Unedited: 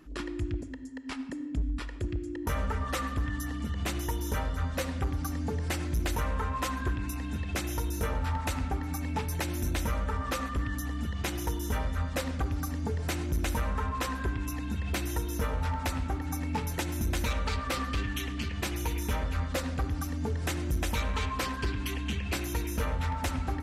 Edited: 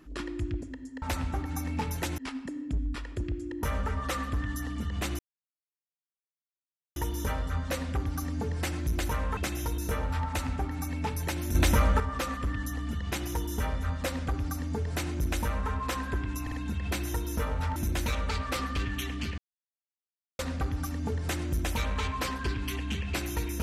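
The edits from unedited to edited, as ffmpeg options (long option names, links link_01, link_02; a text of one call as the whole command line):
ffmpeg -i in.wav -filter_complex "[0:a]asplit=12[link_01][link_02][link_03][link_04][link_05][link_06][link_07][link_08][link_09][link_10][link_11][link_12];[link_01]atrim=end=1.022[link_13];[link_02]atrim=start=15.778:end=16.942[link_14];[link_03]atrim=start=1.018:end=4.03,asetpts=PTS-STARTPTS,afade=type=out:start_time=3.008:duration=0.004:curve=hsin,apad=pad_dur=1.77[link_15];[link_04]atrim=start=4.03:end=6.442,asetpts=PTS-STARTPTS,afade=type=in:duration=0.004:curve=hsin[link_16];[link_05]atrim=start=7.488:end=9.672[link_17];[link_06]atrim=start=9.668:end=10.122,asetpts=PTS-STARTPTS,volume=7.5dB[link_18];[link_07]atrim=start=10.118:end=14.592[link_19];[link_08]atrim=start=14.538:end=14.592[link_20];[link_09]atrim=start=14.538:end=15.782[link_21];[link_10]atrim=start=16.938:end=18.56,asetpts=PTS-STARTPTS,afade=type=out:start_time=1.618:duration=0.004:curve=hsin[link_22];[link_11]atrim=start=18.56:end=19.57,asetpts=PTS-STARTPTS,volume=0[link_23];[link_12]atrim=start=19.57,asetpts=PTS-STARTPTS,afade=type=in:duration=0.004:curve=hsin[link_24];[link_13][link_14]acrossfade=duration=0.004:curve1=hsin:curve2=hsin[link_25];[link_15][link_16]concat=n=2:v=0:a=1[link_26];[link_25][link_26]acrossfade=duration=0.004:curve1=hsin:curve2=hsin[link_27];[link_27][link_17]acrossfade=duration=0.004:curve1=hsin:curve2=hsin[link_28];[link_28][link_18]acrossfade=duration=0.004:curve1=hsin:curve2=hsin[link_29];[link_29][link_19]acrossfade=duration=0.004:curve1=hsin:curve2=hsin[link_30];[link_30][link_20]acrossfade=duration=0.004:curve1=hsin:curve2=hsin[link_31];[link_31][link_21]acrossfade=duration=0.004:curve1=hsin:curve2=hsin[link_32];[link_22][link_23][link_24]concat=n=3:v=0:a=1[link_33];[link_32][link_33]acrossfade=duration=0.004:curve1=hsin:curve2=hsin" out.wav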